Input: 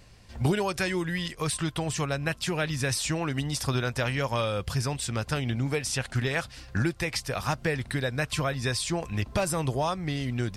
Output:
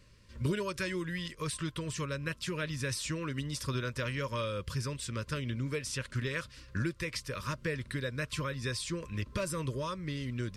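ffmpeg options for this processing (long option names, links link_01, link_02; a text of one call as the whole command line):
ffmpeg -i in.wav -af "asuperstop=centerf=760:order=12:qfactor=2.4,highshelf=frequency=10000:gain=-4,volume=-6.5dB" out.wav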